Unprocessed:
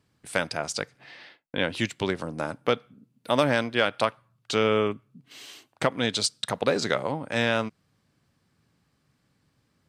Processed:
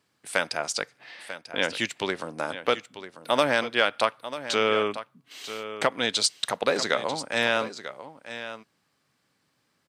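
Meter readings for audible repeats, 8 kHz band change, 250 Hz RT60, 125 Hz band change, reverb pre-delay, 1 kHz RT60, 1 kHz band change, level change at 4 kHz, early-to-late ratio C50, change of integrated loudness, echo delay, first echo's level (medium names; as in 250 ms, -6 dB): 1, +2.5 dB, no reverb, -9.5 dB, no reverb, no reverb, +1.5 dB, +2.5 dB, no reverb, +0.5 dB, 942 ms, -12.5 dB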